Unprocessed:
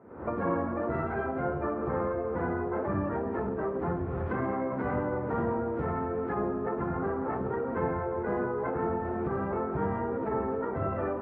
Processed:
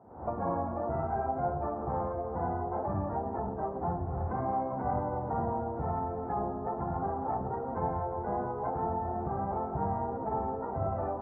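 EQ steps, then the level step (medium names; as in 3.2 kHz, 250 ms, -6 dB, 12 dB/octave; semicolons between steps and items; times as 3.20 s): resonant low-pass 770 Hz, resonance Q 4.9; peaking EQ 450 Hz -13 dB 2.7 oct; +3.0 dB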